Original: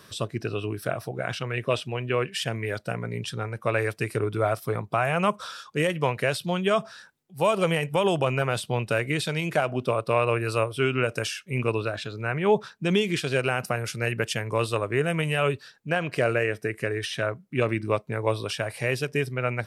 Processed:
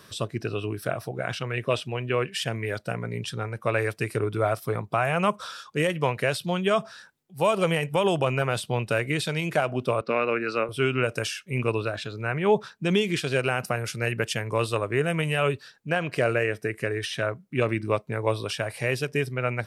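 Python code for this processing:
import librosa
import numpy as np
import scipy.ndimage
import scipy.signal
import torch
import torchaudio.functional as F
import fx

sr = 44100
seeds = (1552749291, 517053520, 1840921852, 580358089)

y = fx.cabinet(x, sr, low_hz=180.0, low_slope=24, high_hz=5300.0, hz=(240.0, 650.0, 1000.0, 1400.0, 2100.0, 3300.0), db=(6, -5, -7, 6, 4, -7), at=(10.01, 10.69))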